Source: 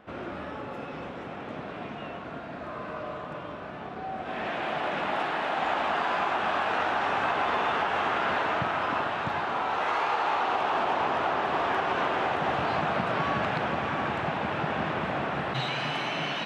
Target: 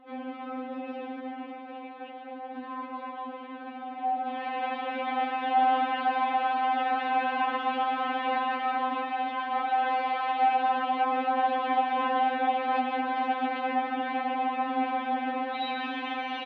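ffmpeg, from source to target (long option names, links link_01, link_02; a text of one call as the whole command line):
ffmpeg -i in.wav -filter_complex "[0:a]asettb=1/sr,asplit=3[link_01][link_02][link_03];[link_01]atrim=end=1.514[link_04];[link_02]atrim=start=1.51:end=2.55,asetpts=PTS-STARTPTS,afade=type=in:duration=0.004:curve=qsin,afade=type=out:start_time=1.036:duration=0.004:curve=qsin,aeval=exprs='val(0)*sin(2*PI*130*n/s)':channel_layout=same[link_05];[link_03]atrim=start=2.546[link_06];[link_04][link_05]acrossfade=duration=0.004:curve1=hsin:curve2=qsin[link_07];[link_07][link_06]acrossfade=duration=0.004:curve1=qsin:curve2=hsin,highpass=250,equalizer=frequency=310:width_type=q:width=4:gain=9,equalizer=frequency=440:width_type=q:width=4:gain=-9,equalizer=frequency=660:width_type=q:width=4:gain=9,equalizer=frequency=1200:width_type=q:width=4:gain=-9,equalizer=frequency=1700:width_type=q:width=4:gain=-5,equalizer=frequency=2700:width_type=q:width=4:gain=-4,lowpass=frequency=3400:width=0.5412,lowpass=frequency=3400:width=1.3066,asplit=2[link_08][link_09];[link_09]aecho=0:1:147:0.335[link_10];[link_08][link_10]amix=inputs=2:normalize=0,afftfilt=real='re*3.46*eq(mod(b,12),0)':imag='im*3.46*eq(mod(b,12),0)':win_size=2048:overlap=0.75,volume=2.5dB" out.wav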